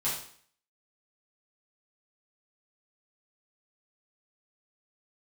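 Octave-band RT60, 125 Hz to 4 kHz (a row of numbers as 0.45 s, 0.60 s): 0.50 s, 0.55 s, 0.55 s, 0.55 s, 0.55 s, 0.55 s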